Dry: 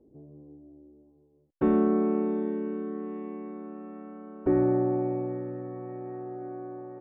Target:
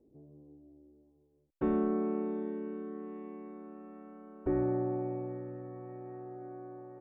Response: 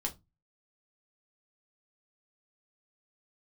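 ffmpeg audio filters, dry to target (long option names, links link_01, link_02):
-af "asubboost=boost=3:cutoff=93,volume=-6dB"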